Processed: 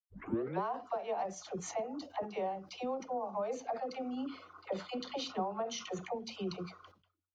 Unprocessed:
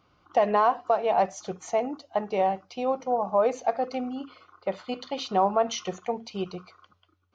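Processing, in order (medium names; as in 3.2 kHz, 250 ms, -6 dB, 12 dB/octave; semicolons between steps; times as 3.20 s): tape start-up on the opening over 0.62 s; compression 4:1, threshold -36 dBFS, peak gain reduction 16.5 dB; phase dispersion lows, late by 79 ms, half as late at 500 Hz; expander -54 dBFS; decay stretcher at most 140 dB/s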